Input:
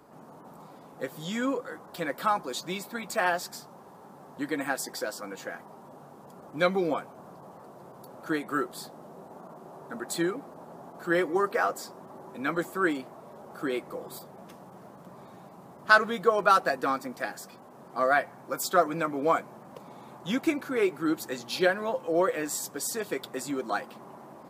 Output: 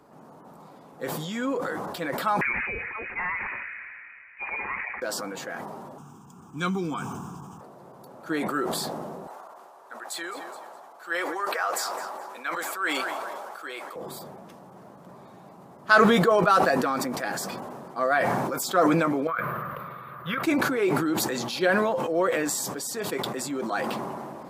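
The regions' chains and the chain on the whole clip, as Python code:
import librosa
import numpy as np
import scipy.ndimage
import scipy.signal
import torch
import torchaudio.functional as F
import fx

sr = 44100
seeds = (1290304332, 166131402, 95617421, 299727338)

y = fx.chain(x, sr, fx.peak_eq(hz=140.0, db=-8.0, octaves=1.9),
    fx.clip_hard(threshold_db=-26.5),
    fx.freq_invert(carrier_hz=2700), at=(2.41, 5.02))
y = fx.chain(y, sr, fx.bass_treble(bass_db=6, treble_db=10),
    fx.fixed_phaser(hz=2900.0, stages=8), at=(5.98, 7.61))
y = fx.chain(y, sr, fx.highpass(hz=810.0, slope=12),
    fx.echo_feedback(ms=210, feedback_pct=40, wet_db=-20.5), at=(9.27, 13.96))
y = fx.chain(y, sr, fx.curve_eq(hz=(150.0, 250.0, 540.0, 850.0, 1200.0, 3800.0, 7200.0, 14000.0), db=(0, -15, -4, -15, 10, -8, -30, 8)),
    fx.over_compress(threshold_db=-33.0, ratio=-0.5), at=(19.27, 20.43))
y = fx.high_shelf(y, sr, hz=11000.0, db=-5.0)
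y = fx.sustainer(y, sr, db_per_s=22.0)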